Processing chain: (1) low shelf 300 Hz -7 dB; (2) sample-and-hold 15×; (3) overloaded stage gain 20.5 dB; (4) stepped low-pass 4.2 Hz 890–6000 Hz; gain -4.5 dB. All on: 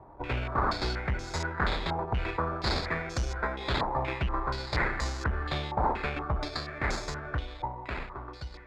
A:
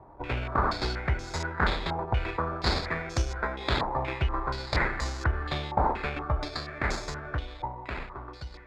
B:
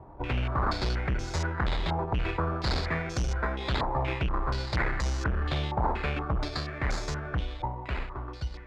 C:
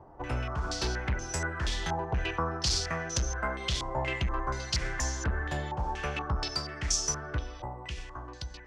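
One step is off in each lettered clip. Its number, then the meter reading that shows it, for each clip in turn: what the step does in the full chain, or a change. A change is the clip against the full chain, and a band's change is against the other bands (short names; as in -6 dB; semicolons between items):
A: 3, distortion -12 dB; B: 1, 125 Hz band +3.5 dB; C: 2, distortion 0 dB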